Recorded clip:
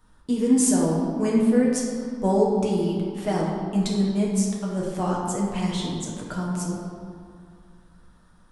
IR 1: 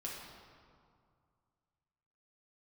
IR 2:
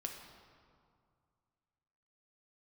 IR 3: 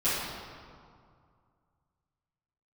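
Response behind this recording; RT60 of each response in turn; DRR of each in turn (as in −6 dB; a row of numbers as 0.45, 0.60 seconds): 1; 2.2, 2.2, 2.2 seconds; −4.5, 2.0, −14.0 decibels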